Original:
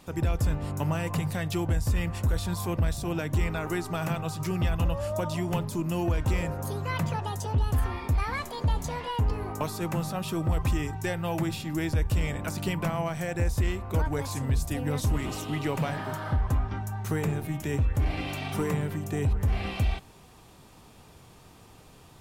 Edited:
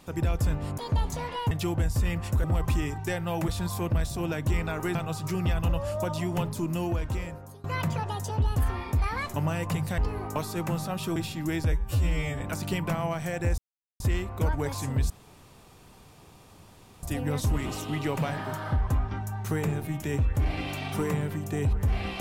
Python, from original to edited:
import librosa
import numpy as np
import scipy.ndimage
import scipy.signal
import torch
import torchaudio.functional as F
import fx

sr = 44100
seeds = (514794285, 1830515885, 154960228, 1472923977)

y = fx.edit(x, sr, fx.swap(start_s=0.78, length_s=0.64, other_s=8.5, other_length_s=0.73),
    fx.cut(start_s=3.82, length_s=0.29),
    fx.fade_out_to(start_s=5.87, length_s=0.93, floor_db=-21.5),
    fx.move(start_s=10.41, length_s=1.04, to_s=2.35),
    fx.stretch_span(start_s=12.01, length_s=0.34, factor=2.0),
    fx.insert_silence(at_s=13.53, length_s=0.42),
    fx.insert_room_tone(at_s=14.63, length_s=1.93), tone=tone)